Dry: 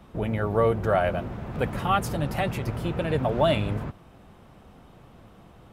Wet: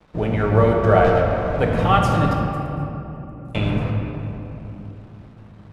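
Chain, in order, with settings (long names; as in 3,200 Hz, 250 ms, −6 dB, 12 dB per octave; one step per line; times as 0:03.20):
0:01.04–0:01.56: lower of the sound and its delayed copy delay 1.9 ms
0:02.33–0:03.55: inverse Chebyshev high-pass filter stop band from 2,600 Hz, stop band 60 dB
dead-zone distortion −49.5 dBFS
high-frequency loss of the air 58 metres
rectangular room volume 170 cubic metres, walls hard, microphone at 0.46 metres
level +5.5 dB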